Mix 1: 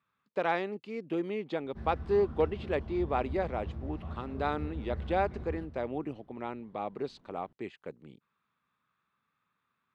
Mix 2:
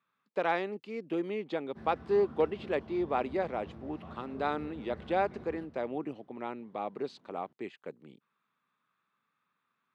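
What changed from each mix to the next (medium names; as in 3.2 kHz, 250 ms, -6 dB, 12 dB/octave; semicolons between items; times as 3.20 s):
master: add high-pass 170 Hz 12 dB/octave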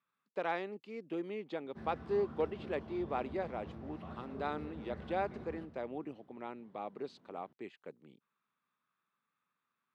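speech -6.0 dB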